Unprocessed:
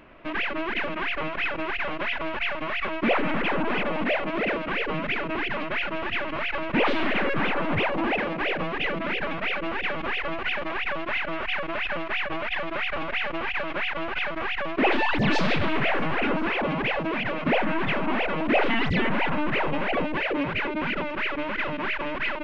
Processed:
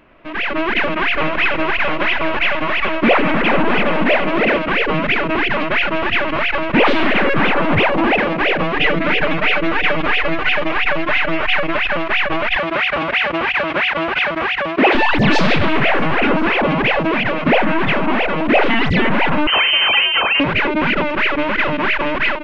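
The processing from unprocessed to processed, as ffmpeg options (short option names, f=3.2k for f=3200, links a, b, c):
-filter_complex "[0:a]asettb=1/sr,asplit=3[a][b][c];[a]atrim=end=0.714[d];[b]atrim=start=0.71:end=4.59,asetpts=PTS-STARTPTS,afade=t=in:d=0.004:c=qsin,afade=t=out:st=3.876:d=0.004:c=qsin,aecho=1:1:431:0.316,atrim=end_sample=171108[e];[c]atrim=start=4.586[f];[d][e]acrossfade=d=0.004:c1=hsin:c2=qsin[g];[g][f]acrossfade=d=0.004:c1=qsin:c2=hsin,asettb=1/sr,asplit=3[h][i][j];[h]atrim=end=8.764[k];[i]atrim=start=8.76:end=11.77,asetpts=PTS-STARTPTS,afade=t=in:d=0.004:c=qsin,afade=t=out:st=3.006:d=0.004:c=qsin,aecho=1:1:6.6:0.56,atrim=end_sample=132741[l];[j]atrim=start=11.766[m];[k][l]acrossfade=d=0.004:c1=hsin:c2=qsin[n];[n][m]acrossfade=d=0.004:c1=qsin:c2=hsin,asettb=1/sr,asplit=3[o][p][q];[o]atrim=end=12.564[r];[p]atrim=start=12.56:end=14.95,asetpts=PTS-STARTPTS,afade=t=in:d=0.004:c=qsin,afade=t=out:st=2.386:d=0.004:c=qsin,highpass=65[s];[q]atrim=start=14.946[t];[r][s]acrossfade=d=0.004:c1=hsin:c2=qsin[u];[u][t]acrossfade=d=0.004:c1=qsin:c2=hsin,asettb=1/sr,asplit=3[v][w][x];[v]atrim=end=19.474[y];[w]atrim=start=19.47:end=20.4,asetpts=PTS-STARTPTS,afade=t=in:d=0.004:c=qsin,afade=t=out:st=0.926:d=0.004:c=qsin,lowpass=f=2.6k:t=q:w=0.5098,lowpass=f=2.6k:t=q:w=0.6013,lowpass=f=2.6k:t=q:w=0.9,lowpass=f=2.6k:t=q:w=2.563,afreqshift=-3100[z];[x]atrim=start=20.396[aa];[y][z]acrossfade=d=0.004:c1=hsin:c2=qsin[ab];[ab][aa]acrossfade=d=0.004:c1=qsin:c2=hsin,dynaudnorm=f=290:g=3:m=11.5dB"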